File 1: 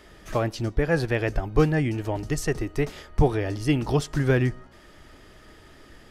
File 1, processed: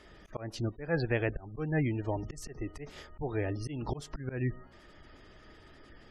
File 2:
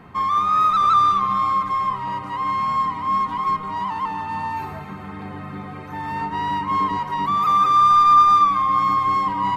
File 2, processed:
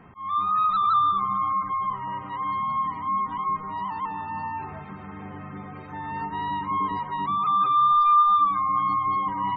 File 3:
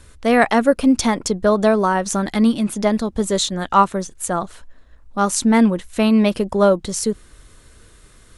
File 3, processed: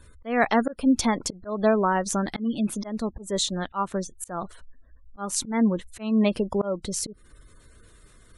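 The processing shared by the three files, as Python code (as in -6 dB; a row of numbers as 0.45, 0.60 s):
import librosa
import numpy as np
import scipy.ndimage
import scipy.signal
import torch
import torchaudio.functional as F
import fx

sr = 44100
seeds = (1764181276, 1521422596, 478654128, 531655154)

y = fx.spec_gate(x, sr, threshold_db=-30, keep='strong')
y = fx.auto_swell(y, sr, attack_ms=221.0)
y = F.gain(torch.from_numpy(y), -5.0).numpy()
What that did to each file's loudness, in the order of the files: -10.0, -5.0, -8.0 LU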